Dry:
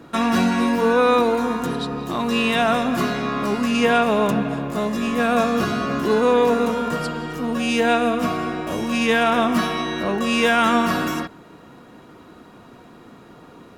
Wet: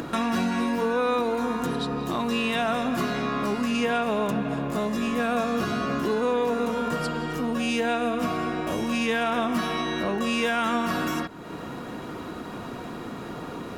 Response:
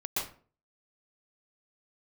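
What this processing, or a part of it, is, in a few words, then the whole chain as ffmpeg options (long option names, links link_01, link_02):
upward and downward compression: -af "acompressor=mode=upward:threshold=-22dB:ratio=2.5,acompressor=threshold=-21dB:ratio=3,volume=-2dB"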